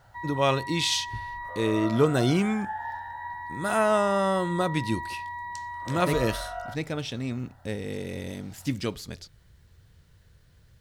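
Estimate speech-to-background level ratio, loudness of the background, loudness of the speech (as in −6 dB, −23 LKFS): 8.5 dB, −36.0 LKFS, −27.5 LKFS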